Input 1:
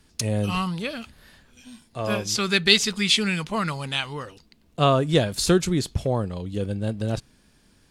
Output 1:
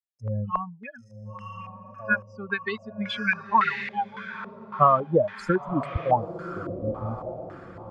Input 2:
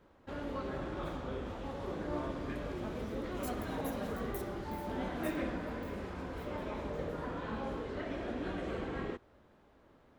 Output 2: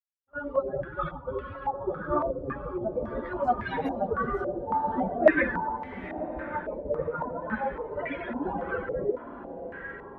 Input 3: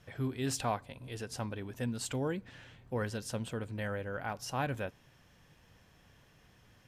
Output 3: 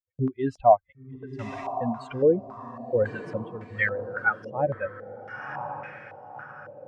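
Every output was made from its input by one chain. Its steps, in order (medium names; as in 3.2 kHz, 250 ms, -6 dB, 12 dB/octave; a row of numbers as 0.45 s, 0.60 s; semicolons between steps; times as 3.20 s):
expander on every frequency bin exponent 3; gate -56 dBFS, range -25 dB; bass shelf 220 Hz -7 dB; compression 4:1, threshold -30 dBFS; echo that smears into a reverb 1029 ms, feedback 43%, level -10 dB; step-sequenced low-pass 3.6 Hz 540–2100 Hz; peak normalisation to -6 dBFS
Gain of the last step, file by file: +8.0 dB, +17.0 dB, +14.0 dB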